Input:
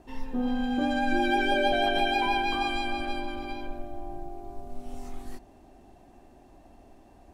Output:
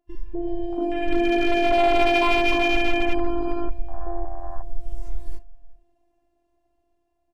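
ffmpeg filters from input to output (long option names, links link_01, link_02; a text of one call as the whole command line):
ffmpeg -i in.wav -filter_complex "[0:a]asplit=2[link_01][link_02];[link_02]acompressor=threshold=-38dB:ratio=5,volume=-1dB[link_03];[link_01][link_03]amix=inputs=2:normalize=0,agate=range=-14dB:threshold=-37dB:ratio=16:detection=peak,afftfilt=real='hypot(re,im)*cos(PI*b)':imag='0':win_size=512:overlap=0.75,asplit=2[link_04][link_05];[link_05]adelay=364,lowpass=frequency=1000:poles=1,volume=-18dB,asplit=2[link_06][link_07];[link_07]adelay=364,lowpass=frequency=1000:poles=1,volume=0.17[link_08];[link_04][link_06][link_08]amix=inputs=3:normalize=0,afwtdn=0.0158,dynaudnorm=framelen=460:gausssize=7:maxgain=7dB,asoftclip=type=hard:threshold=-16.5dB,adynamicequalizer=threshold=0.00891:dfrequency=4200:dqfactor=0.7:tfrequency=4200:tqfactor=0.7:attack=5:release=100:ratio=0.375:range=2:mode=cutabove:tftype=highshelf,volume=4.5dB" out.wav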